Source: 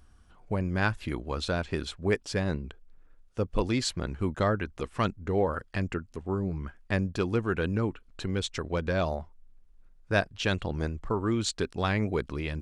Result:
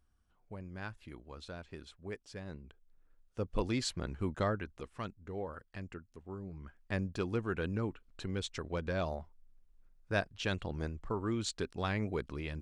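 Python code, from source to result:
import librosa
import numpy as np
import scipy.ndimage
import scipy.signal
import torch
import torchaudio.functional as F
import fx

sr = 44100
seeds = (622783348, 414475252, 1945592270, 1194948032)

y = fx.gain(x, sr, db=fx.line((2.41, -16.5), (3.56, -6.0), (4.43, -6.0), (5.06, -14.0), (6.49, -14.0), (6.99, -7.0)))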